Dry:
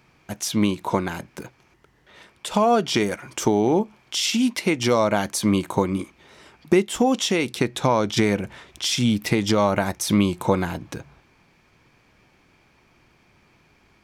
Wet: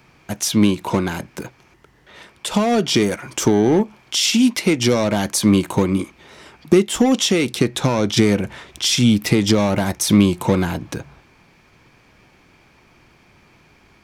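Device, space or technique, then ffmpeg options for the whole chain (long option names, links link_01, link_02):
one-band saturation: -filter_complex "[0:a]acrossover=split=420|3200[link_01][link_02][link_03];[link_02]asoftclip=type=tanh:threshold=-27.5dB[link_04];[link_01][link_04][link_03]amix=inputs=3:normalize=0,volume=6dB"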